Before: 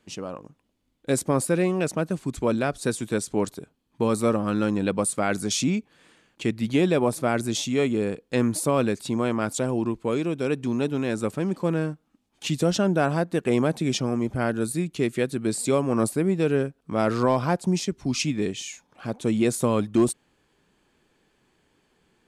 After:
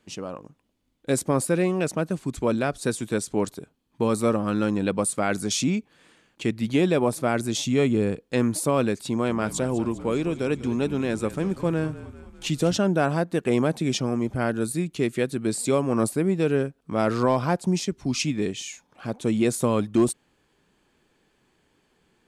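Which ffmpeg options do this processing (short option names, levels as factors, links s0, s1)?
-filter_complex "[0:a]asettb=1/sr,asplit=3[s0][s1][s2];[s0]atrim=end=7.594[s3];[s1]atrim=start=7.59:end=8.21,asetpts=PTS-STARTPTS,afade=t=in:d=0.004:c=qsin,afade=t=out:st=0.616:d=0.004:c=qsin,lowshelf=f=150:g=9.5[s4];[s2]atrim=start=8.206[s5];[s3][s4]acrossfade=d=0.004:c1=hsin:c2=qsin[s6];[s6][s5]acrossfade=d=0.004:c1=qsin:c2=hsin,asettb=1/sr,asplit=3[s7][s8][s9];[s7]atrim=end=9.074[s10];[s8]atrim=start=9.07:end=12.77,asetpts=PTS-STARTPTS,afade=t=in:d=0.004:c=qsin,afade=t=out:st=3.696:d=0.004:c=qsin,asplit=7[s11][s12][s13][s14][s15][s16][s17];[s12]adelay=198,afreqshift=-41,volume=0.178[s18];[s13]adelay=396,afreqshift=-82,volume=0.108[s19];[s14]adelay=594,afreqshift=-123,volume=0.0661[s20];[s15]adelay=792,afreqshift=-164,volume=0.0403[s21];[s16]adelay=990,afreqshift=-205,volume=0.0245[s22];[s17]adelay=1188,afreqshift=-246,volume=0.015[s23];[s11][s18][s19][s20][s21][s22][s23]amix=inputs=7:normalize=0,atrim=end_sample=163170[s24];[s9]atrim=start=12.766[s25];[s10][s24]acrossfade=d=0.004:c1=hsin:c2=qsin[s26];[s26][s25]acrossfade=d=0.004:c1=qsin:c2=hsin"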